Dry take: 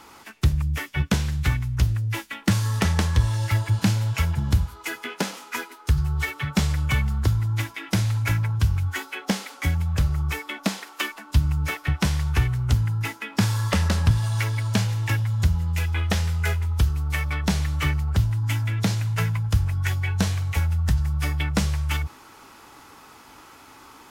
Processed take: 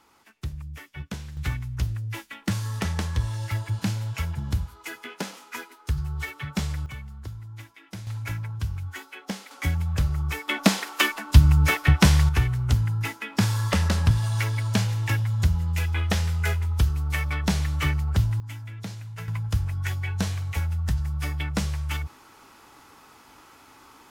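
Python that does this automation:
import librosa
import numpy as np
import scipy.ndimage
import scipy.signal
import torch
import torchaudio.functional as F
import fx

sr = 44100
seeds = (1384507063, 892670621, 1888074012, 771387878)

y = fx.gain(x, sr, db=fx.steps((0.0, -13.0), (1.37, -6.0), (6.86, -16.0), (8.07, -8.5), (9.51, -2.0), (10.48, 6.0), (12.29, -1.0), (18.4, -13.0), (19.28, -4.0)))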